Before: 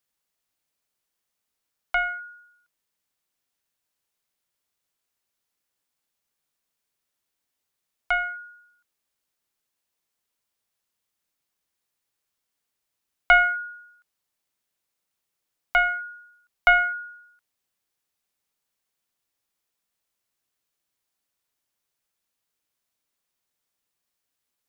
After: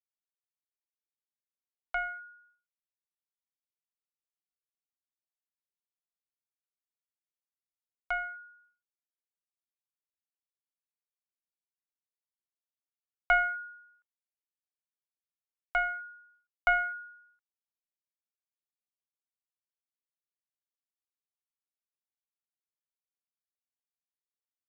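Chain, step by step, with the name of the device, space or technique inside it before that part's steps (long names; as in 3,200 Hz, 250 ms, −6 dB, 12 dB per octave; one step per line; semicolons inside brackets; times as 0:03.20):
hearing-loss simulation (low-pass filter 2,100 Hz 12 dB per octave; downward expander −56 dBFS)
level −7.5 dB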